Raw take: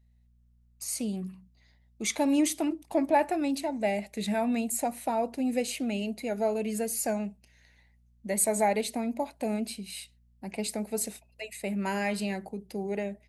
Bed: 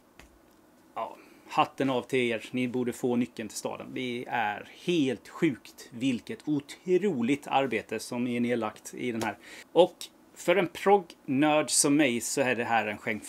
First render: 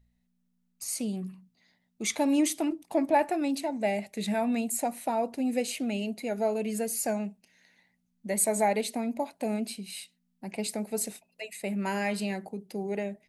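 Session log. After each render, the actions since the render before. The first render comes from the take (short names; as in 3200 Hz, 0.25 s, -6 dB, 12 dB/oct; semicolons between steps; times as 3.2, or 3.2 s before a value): de-hum 60 Hz, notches 2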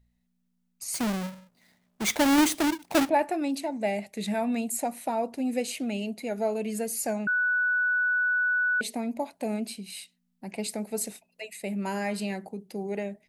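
0.94–3.09 half-waves squared off; 7.27–8.81 bleep 1480 Hz -22 dBFS; 11.58–12.14 bell 1000 Hz -> 3400 Hz -6 dB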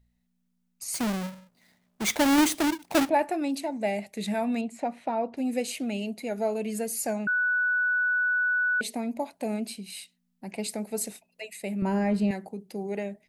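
4.61–5.37 LPF 3100 Hz; 11.82–12.31 tilt -3.5 dB/oct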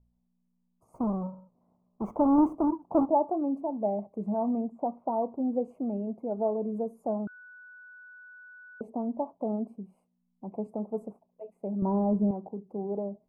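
elliptic low-pass 1100 Hz, stop band 40 dB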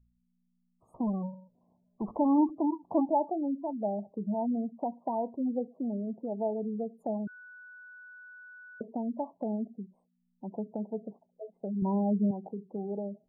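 spectral gate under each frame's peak -20 dB strong; dynamic EQ 490 Hz, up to -4 dB, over -37 dBFS, Q 0.83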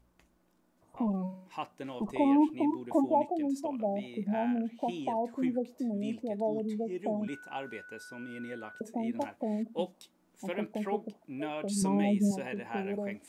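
add bed -13.5 dB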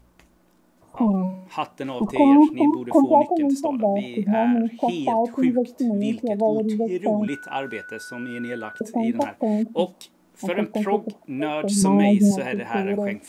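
gain +11 dB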